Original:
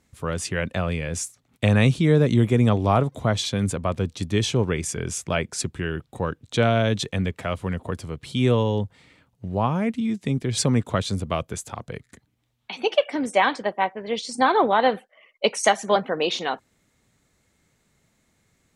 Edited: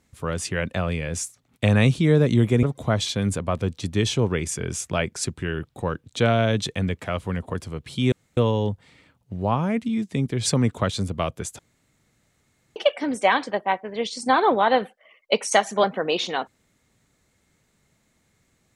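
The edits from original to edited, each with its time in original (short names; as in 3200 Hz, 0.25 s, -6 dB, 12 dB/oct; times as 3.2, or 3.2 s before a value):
2.63–3 cut
8.49 insert room tone 0.25 s
11.71–12.88 room tone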